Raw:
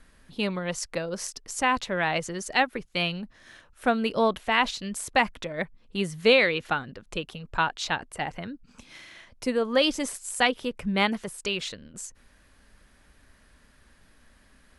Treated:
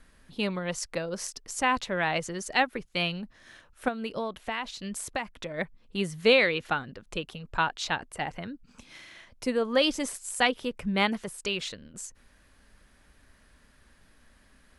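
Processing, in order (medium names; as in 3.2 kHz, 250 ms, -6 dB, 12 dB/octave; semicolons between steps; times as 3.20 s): 3.88–5.54 s: compression 4:1, threshold -29 dBFS, peak gain reduction 11 dB; trim -1.5 dB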